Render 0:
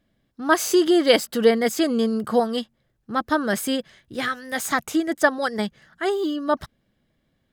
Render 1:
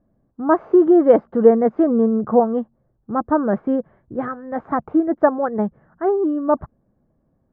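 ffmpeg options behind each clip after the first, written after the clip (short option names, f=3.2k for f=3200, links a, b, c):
-af "lowpass=f=1.1k:w=0.5412,lowpass=f=1.1k:w=1.3066,volume=5dB"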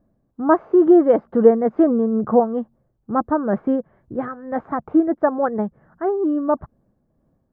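-af "tremolo=f=2.2:d=0.43,volume=1.5dB"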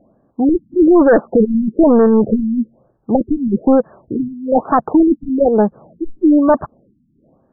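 -filter_complex "[0:a]asplit=2[a][b];[b]highpass=f=720:p=1,volume=23dB,asoftclip=type=tanh:threshold=-1dB[c];[a][c]amix=inputs=2:normalize=0,lowpass=f=1k:p=1,volume=-6dB,asoftclip=type=hard:threshold=-10dB,afftfilt=real='re*lt(b*sr/1024,290*pow(1900/290,0.5+0.5*sin(2*PI*1.1*pts/sr)))':imag='im*lt(b*sr/1024,290*pow(1900/290,0.5+0.5*sin(2*PI*1.1*pts/sr)))':win_size=1024:overlap=0.75,volume=3.5dB"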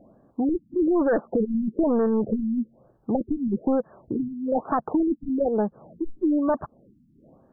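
-af "acompressor=threshold=-30dB:ratio=2"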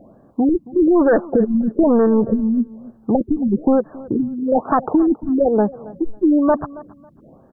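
-af "aecho=1:1:274|548:0.1|0.024,volume=7.5dB"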